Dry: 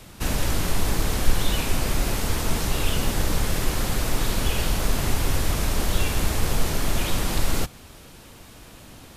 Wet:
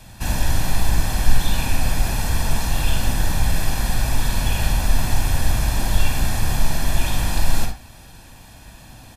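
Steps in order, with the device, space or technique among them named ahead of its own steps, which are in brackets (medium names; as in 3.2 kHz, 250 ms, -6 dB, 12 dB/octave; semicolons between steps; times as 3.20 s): microphone above a desk (comb 1.2 ms, depth 60%; reverberation RT60 0.30 s, pre-delay 43 ms, DRR 3 dB); trim -1.5 dB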